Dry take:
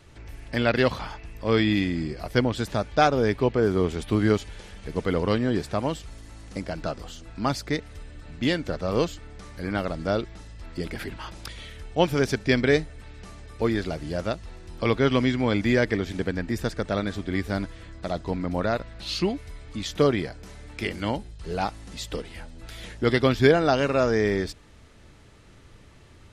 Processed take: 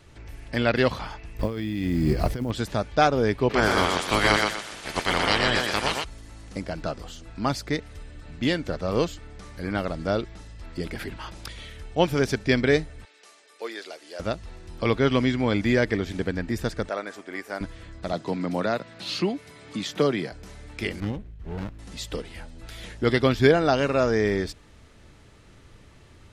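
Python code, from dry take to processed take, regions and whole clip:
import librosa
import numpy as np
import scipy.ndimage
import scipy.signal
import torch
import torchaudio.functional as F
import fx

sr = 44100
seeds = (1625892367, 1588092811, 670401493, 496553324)

y = fx.chain(x, sr, fx.over_compress(threshold_db=-31.0, ratio=-1.0),
    fx.low_shelf(hz=420.0, db=7.5),
    fx.quant_float(bits=4), at=(1.39, 2.51))
y = fx.spec_clip(y, sr, under_db=26, at=(3.49, 6.03), fade=0.02)
y = fx.echo_thinned(y, sr, ms=122, feedback_pct=32, hz=200.0, wet_db=-3.0, at=(3.49, 6.03), fade=0.02)
y = fx.chain(y, sr, fx.highpass(hz=420.0, slope=24),
    fx.peak_eq(hz=710.0, db=-7.5, octaves=2.9), at=(13.05, 14.2))
y = fx.chain(y, sr, fx.highpass(hz=500.0, slope=12),
    fx.peak_eq(hz=3700.0, db=-10.0, octaves=0.67), at=(16.89, 17.61))
y = fx.chain(y, sr, fx.highpass(hz=130.0, slope=24),
    fx.band_squash(depth_pct=40), at=(18.13, 20.32))
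y = fx.chain(y, sr, fx.air_absorb(metres=120.0),
    fx.fixed_phaser(hz=2100.0, stages=4),
    fx.running_max(window=33), at=(21.0, 21.79))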